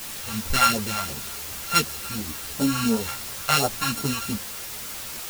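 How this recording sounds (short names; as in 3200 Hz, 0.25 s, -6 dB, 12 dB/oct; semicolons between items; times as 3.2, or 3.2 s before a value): a buzz of ramps at a fixed pitch in blocks of 32 samples; phasing stages 2, 2.8 Hz, lowest notch 310–2300 Hz; a quantiser's noise floor 6-bit, dither triangular; a shimmering, thickened sound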